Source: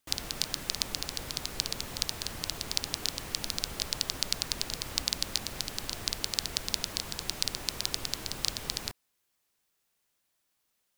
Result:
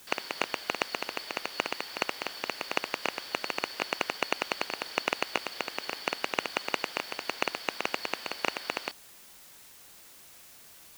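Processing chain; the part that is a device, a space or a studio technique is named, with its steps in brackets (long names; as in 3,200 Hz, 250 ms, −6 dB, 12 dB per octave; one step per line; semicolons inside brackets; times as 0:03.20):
split-band scrambled radio (band-splitting scrambler in four parts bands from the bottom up 4321; band-pass filter 340–3,200 Hz; white noise bed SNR 17 dB)
level +4 dB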